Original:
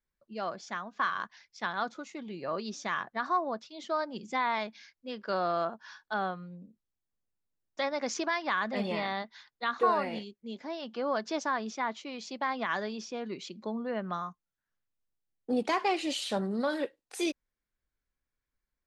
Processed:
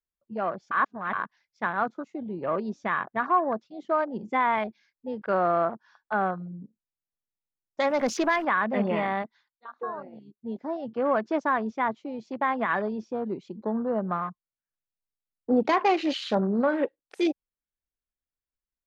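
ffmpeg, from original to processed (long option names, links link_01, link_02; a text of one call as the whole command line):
ffmpeg -i in.wav -filter_complex "[0:a]asettb=1/sr,asplit=3[link_01][link_02][link_03];[link_01]atrim=end=7.854[link_04];[link_02]atrim=start=7.85:end=8.45,asetpts=PTS-STARTPTS,afade=type=in:duration=0.004:curve=qsin,afade=type=out:start_time=0.596:duration=0.004:curve=qsin,aeval=exprs='val(0)+0.5*0.0126*sgn(val(0))':channel_layout=same[link_05];[link_03]atrim=start=8.446[link_06];[link_04][link_05]acrossfade=duration=0.004:curve1=hsin:curve2=qsin[link_07];[link_07][link_06]acrossfade=duration=0.004:curve1=qsin:curve2=hsin,asplit=5[link_08][link_09][link_10][link_11][link_12];[link_08]atrim=end=0.712[link_13];[link_09]atrim=start=0.708:end=1.132,asetpts=PTS-STARTPTS,areverse[link_14];[link_10]atrim=start=1.128:end=9.6,asetpts=PTS-STARTPTS,afade=type=out:start_time=8.192:duration=0.28:silence=0.199526[link_15];[link_11]atrim=start=9.6:end=10.21,asetpts=PTS-STARTPTS,volume=-14dB[link_16];[link_12]atrim=start=10.21,asetpts=PTS-STARTPTS,afade=type=in:duration=0.28:silence=0.199526[link_17];[link_13][link_14]acrossfade=duration=0.004:curve1=hsin:curve2=hsin[link_18];[link_15][link_16][link_17]concat=n=3:v=0:a=1[link_19];[link_18][link_19]acrossfade=duration=0.004:curve1=hsin:curve2=hsin,afwtdn=0.00891,highshelf=frequency=3100:gain=-9.5,volume=7dB" out.wav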